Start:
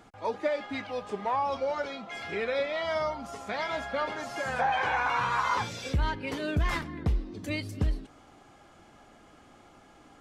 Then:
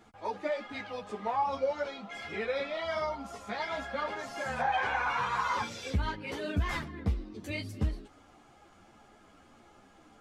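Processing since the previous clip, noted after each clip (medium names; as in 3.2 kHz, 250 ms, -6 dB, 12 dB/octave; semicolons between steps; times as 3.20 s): three-phase chorus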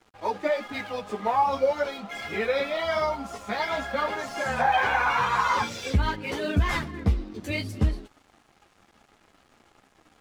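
crossover distortion -57.5 dBFS; trim +7.5 dB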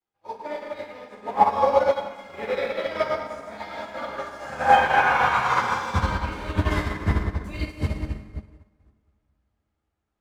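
plate-style reverb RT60 3.7 s, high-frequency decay 0.5×, DRR -8 dB; upward expansion 2.5:1, over -33 dBFS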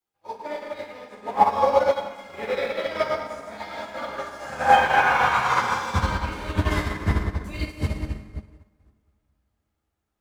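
treble shelf 4.5 kHz +5 dB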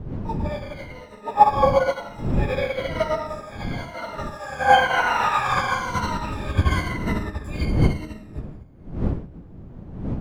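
drifting ripple filter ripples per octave 1.9, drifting -1 Hz, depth 17 dB; wind noise 180 Hz -26 dBFS; trim -3 dB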